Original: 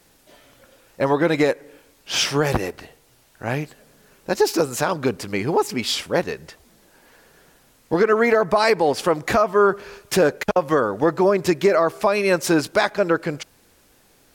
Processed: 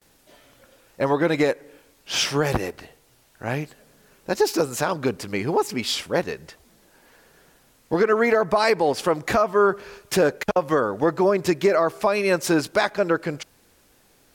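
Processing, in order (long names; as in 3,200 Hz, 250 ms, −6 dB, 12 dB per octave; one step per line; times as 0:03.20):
noise gate with hold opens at −47 dBFS
level −2 dB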